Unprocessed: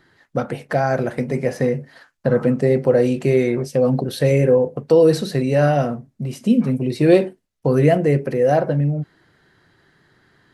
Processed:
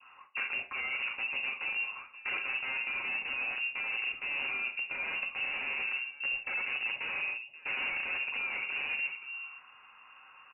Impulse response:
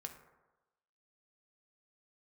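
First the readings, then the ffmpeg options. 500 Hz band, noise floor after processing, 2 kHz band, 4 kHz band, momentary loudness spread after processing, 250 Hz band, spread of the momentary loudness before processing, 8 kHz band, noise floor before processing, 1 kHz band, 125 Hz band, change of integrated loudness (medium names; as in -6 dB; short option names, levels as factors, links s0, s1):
-37.0 dB, -57 dBFS, +1.0 dB, -1.0 dB, 4 LU, -39.0 dB, 11 LU, under -40 dB, -68 dBFS, -17.5 dB, under -40 dB, -14.5 dB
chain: -filter_complex "[0:a]aresample=8000,asoftclip=type=tanh:threshold=0.106,aresample=44100,equalizer=f=490:t=o:w=3:g=-4.5,aecho=1:1:529:0.075,acontrast=54,aeval=exprs='(mod(6.68*val(0)+1,2)-1)/6.68':c=same[s0];[1:a]atrim=start_sample=2205,afade=t=out:st=0.34:d=0.01,atrim=end_sample=15435,asetrate=74970,aresample=44100[s1];[s0][s1]afir=irnorm=-1:irlink=0,areverse,acompressor=threshold=0.0126:ratio=6,areverse,adynamicequalizer=threshold=0.00126:dfrequency=1200:dqfactor=0.93:tfrequency=1200:tqfactor=0.93:attack=5:release=100:ratio=0.375:range=3.5:mode=cutabove:tftype=bell,lowpass=f=2500:t=q:w=0.5098,lowpass=f=2500:t=q:w=0.6013,lowpass=f=2500:t=q:w=0.9,lowpass=f=2500:t=q:w=2.563,afreqshift=-2900,volume=2"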